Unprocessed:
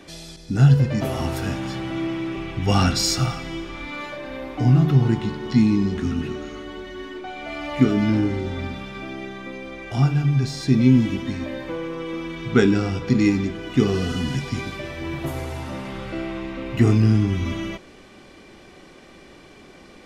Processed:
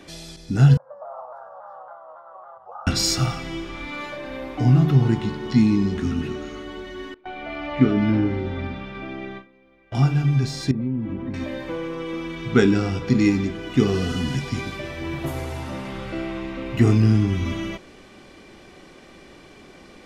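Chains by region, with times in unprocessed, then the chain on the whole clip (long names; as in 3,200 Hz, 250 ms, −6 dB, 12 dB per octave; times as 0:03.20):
0:00.77–0:02.87: downward compressor 10 to 1, threshold −25 dBFS + elliptic band-pass filter 560–1,300 Hz + pitch modulation by a square or saw wave saw down 3.6 Hz, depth 100 cents
0:07.14–0:09.95: low-pass filter 3,200 Hz + noise gate with hold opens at −24 dBFS, closes at −31 dBFS
0:10.71–0:11.34: low-pass filter 1,200 Hz + downward compressor 3 to 1, threshold −25 dBFS
whole clip: no processing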